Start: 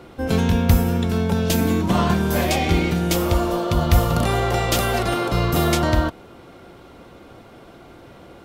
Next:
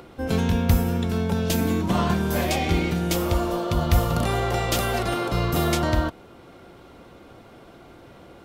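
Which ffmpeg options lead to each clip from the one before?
ffmpeg -i in.wav -af "acompressor=mode=upward:threshold=-40dB:ratio=2.5,volume=-3.5dB" out.wav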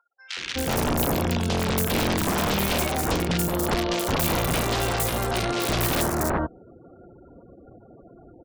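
ffmpeg -i in.wav -filter_complex "[0:a]aeval=exprs='(mod(6.68*val(0)+1,2)-1)/6.68':channel_layout=same,afftfilt=real='re*gte(hypot(re,im),0.0112)':imag='im*gte(hypot(re,im),0.0112)':win_size=1024:overlap=0.75,acrossover=split=1700|5900[link_01][link_02][link_03];[link_03]adelay=280[link_04];[link_01]adelay=370[link_05];[link_05][link_02][link_04]amix=inputs=3:normalize=0" out.wav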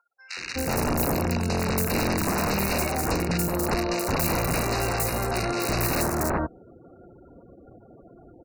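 ffmpeg -i in.wav -af "asuperstop=centerf=3300:order=12:qfactor=3.4,volume=-1dB" out.wav

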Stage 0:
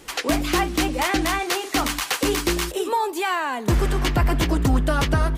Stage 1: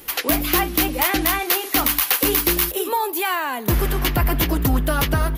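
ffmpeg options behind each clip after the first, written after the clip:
ffmpeg -i in.wav -af "equalizer=frequency=3000:width_type=o:width=1.7:gain=2.5,aexciter=amount=6:drive=8.1:freq=11000" out.wav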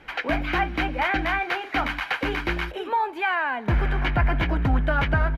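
ffmpeg -i in.wav -af "acrusher=bits=7:mix=0:aa=0.000001,lowpass=frequency=2000:width_type=q:width=1.6,aecho=1:1:1.3:0.36,volume=-4dB" out.wav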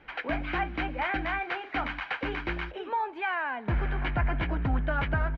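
ffmpeg -i in.wav -af "lowpass=3500,volume=-6dB" out.wav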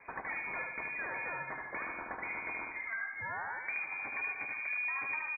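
ffmpeg -i in.wav -filter_complex "[0:a]acompressor=threshold=-38dB:ratio=6,asplit=2[link_01][link_02];[link_02]aecho=0:1:75|150|225|300|375|450:0.631|0.297|0.139|0.0655|0.0308|0.0145[link_03];[link_01][link_03]amix=inputs=2:normalize=0,lowpass=frequency=2100:width_type=q:width=0.5098,lowpass=frequency=2100:width_type=q:width=0.6013,lowpass=frequency=2100:width_type=q:width=0.9,lowpass=frequency=2100:width_type=q:width=2.563,afreqshift=-2500" out.wav

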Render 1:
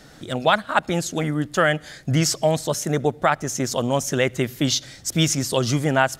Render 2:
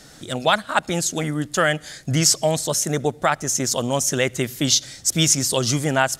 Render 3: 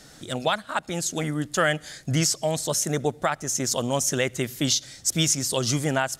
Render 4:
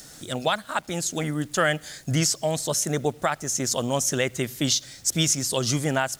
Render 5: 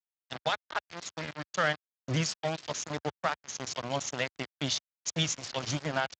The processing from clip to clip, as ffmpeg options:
ffmpeg -i in.wav -af "equalizer=frequency=8400:width_type=o:width=1.9:gain=9,volume=-1dB" out.wav
ffmpeg -i in.wav -af "alimiter=limit=-7.5dB:level=0:latency=1:release=436,volume=-3dB" out.wav
ffmpeg -i in.wav -filter_complex "[0:a]acrossover=split=6000[link_01][link_02];[link_02]acompressor=mode=upward:threshold=-40dB:ratio=2.5[link_03];[link_01][link_03]amix=inputs=2:normalize=0,acrusher=bits=8:mix=0:aa=0.000001" out.wav
ffmpeg -i in.wav -af "equalizer=frequency=360:width=2.9:gain=-14.5,aeval=exprs='val(0)*gte(abs(val(0)),0.0596)':channel_layout=same,volume=-4.5dB" -ar 16000 -c:a libspeex -b:a 21k out.spx

